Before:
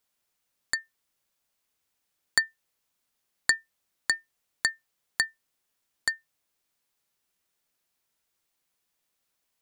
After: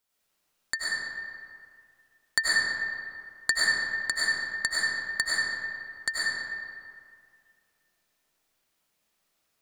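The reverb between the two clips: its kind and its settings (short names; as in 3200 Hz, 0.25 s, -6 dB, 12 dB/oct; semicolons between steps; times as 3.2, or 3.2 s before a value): digital reverb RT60 2.2 s, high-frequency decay 0.6×, pre-delay 60 ms, DRR -8 dB; gain -2.5 dB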